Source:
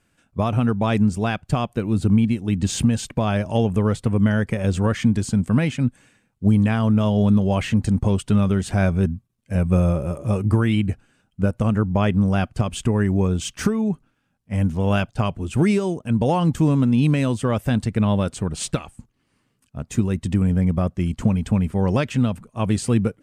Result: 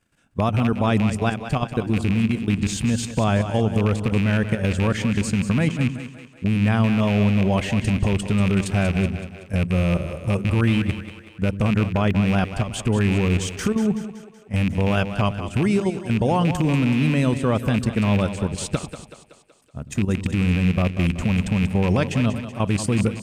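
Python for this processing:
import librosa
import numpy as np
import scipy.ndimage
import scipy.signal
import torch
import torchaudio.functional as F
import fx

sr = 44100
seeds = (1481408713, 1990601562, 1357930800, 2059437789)

p1 = fx.rattle_buzz(x, sr, strikes_db=-17.0, level_db=-17.0)
p2 = fx.level_steps(p1, sr, step_db=11)
p3 = p2 + fx.echo_split(p2, sr, split_hz=340.0, low_ms=96, high_ms=188, feedback_pct=52, wet_db=-10, dry=0)
y = F.gain(torch.from_numpy(p3), 3.0).numpy()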